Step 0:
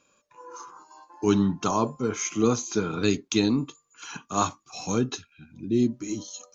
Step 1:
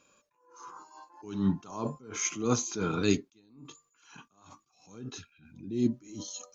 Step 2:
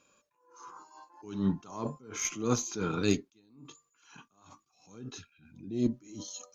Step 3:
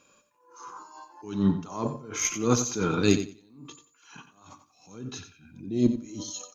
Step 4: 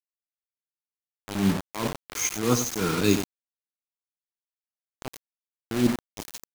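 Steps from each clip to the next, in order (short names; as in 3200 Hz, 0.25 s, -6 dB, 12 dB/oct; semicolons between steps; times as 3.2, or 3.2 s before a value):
attack slew limiter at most 100 dB/s
added harmonics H 4 -25 dB, 7 -44 dB, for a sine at -11.5 dBFS; gain -1.5 dB
feedback echo 90 ms, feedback 19%, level -11 dB; gain +5.5 dB
bit-crush 5-bit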